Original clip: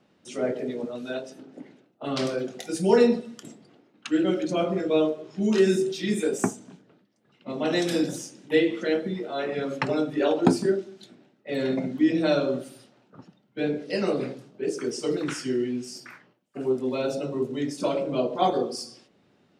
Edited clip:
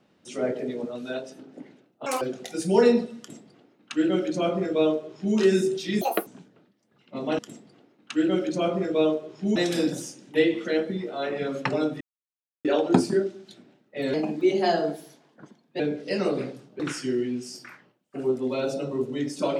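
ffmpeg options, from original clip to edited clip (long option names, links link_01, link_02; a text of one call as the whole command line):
ffmpeg -i in.wav -filter_complex "[0:a]asplit=11[link_01][link_02][link_03][link_04][link_05][link_06][link_07][link_08][link_09][link_10][link_11];[link_01]atrim=end=2.064[link_12];[link_02]atrim=start=2.06:end=2.36,asetpts=PTS-STARTPTS,asetrate=86877,aresample=44100[link_13];[link_03]atrim=start=2.356:end=6.164[link_14];[link_04]atrim=start=6.16:end=6.6,asetpts=PTS-STARTPTS,asetrate=76293,aresample=44100,atrim=end_sample=11216,asetpts=PTS-STARTPTS[link_15];[link_05]atrim=start=6.596:end=7.722[link_16];[link_06]atrim=start=3.338:end=5.512[link_17];[link_07]atrim=start=7.718:end=10.17,asetpts=PTS-STARTPTS,afade=type=out:start_time=2.448:duration=0.004:curve=hsin,apad=pad_dur=0.64[link_18];[link_08]atrim=start=10.17:end=11.664,asetpts=PTS-STARTPTS,afade=type=in:duration=0.004:curve=hsin[link_19];[link_09]atrim=start=11.66:end=13.62,asetpts=PTS-STARTPTS,asetrate=52038,aresample=44100[link_20];[link_10]atrim=start=13.616:end=14.622[link_21];[link_11]atrim=start=15.208[link_22];[link_12][link_13]acrossfade=duration=0.004:curve1=hsin:curve2=hsin[link_23];[link_23][link_14]acrossfade=duration=0.004:curve1=hsin:curve2=hsin[link_24];[link_24][link_15]acrossfade=duration=0.004:curve1=hsin:curve2=hsin[link_25];[link_25][link_16]acrossfade=duration=0.004:curve1=hsin:curve2=hsin[link_26];[link_26][link_17]acrossfade=duration=0.004:curve1=hsin:curve2=hsin[link_27];[link_18][link_19]concat=n=2:v=0:a=1[link_28];[link_27][link_28]acrossfade=duration=0.004:curve1=hsin:curve2=hsin[link_29];[link_29][link_20]acrossfade=duration=0.004:curve1=hsin:curve2=hsin[link_30];[link_30][link_21]acrossfade=duration=0.004:curve1=hsin:curve2=hsin[link_31];[link_31][link_22]acrossfade=duration=0.004:curve1=hsin:curve2=hsin" out.wav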